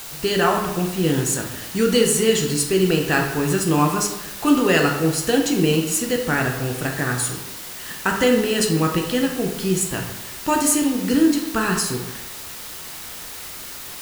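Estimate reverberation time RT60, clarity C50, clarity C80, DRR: 1.0 s, 5.5 dB, 7.5 dB, 1.5 dB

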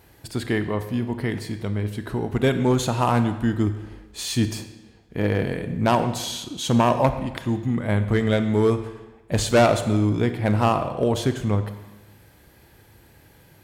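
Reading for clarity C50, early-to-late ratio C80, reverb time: 10.5 dB, 11.5 dB, 1.1 s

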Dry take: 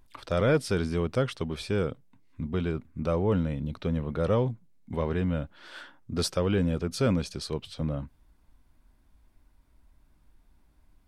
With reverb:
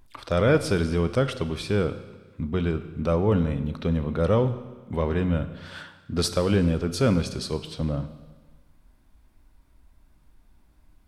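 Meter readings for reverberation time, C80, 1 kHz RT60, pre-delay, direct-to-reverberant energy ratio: 1.3 s, 13.5 dB, 1.3 s, 32 ms, 10.5 dB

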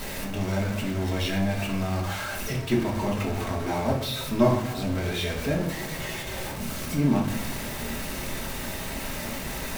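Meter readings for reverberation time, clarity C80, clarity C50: 0.90 s, 9.5 dB, 6.5 dB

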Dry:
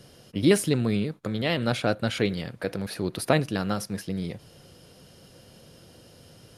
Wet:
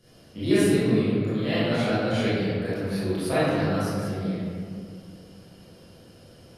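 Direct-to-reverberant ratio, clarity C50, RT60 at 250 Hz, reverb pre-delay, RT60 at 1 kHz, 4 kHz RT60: −13.5 dB, −5.5 dB, 2.9 s, 24 ms, 2.0 s, 1.1 s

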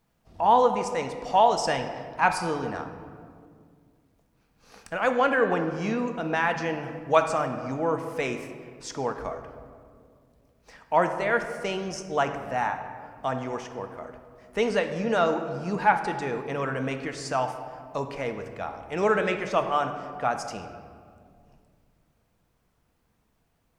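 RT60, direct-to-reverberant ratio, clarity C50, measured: 2.2 s, 6.0 dB, 8.0 dB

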